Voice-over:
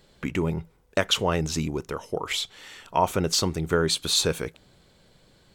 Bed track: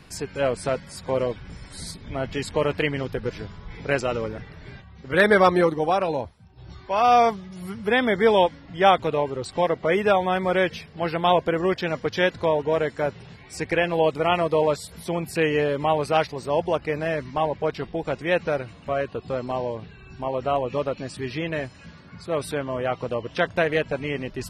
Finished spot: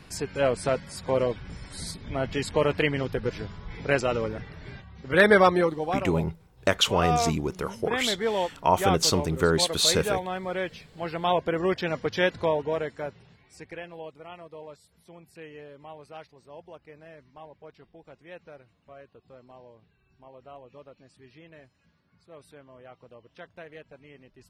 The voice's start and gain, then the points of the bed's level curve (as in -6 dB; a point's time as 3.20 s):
5.70 s, +0.5 dB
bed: 5.34 s -0.5 dB
6.07 s -9 dB
10.74 s -9 dB
11.70 s -2.5 dB
12.44 s -2.5 dB
14.26 s -22.5 dB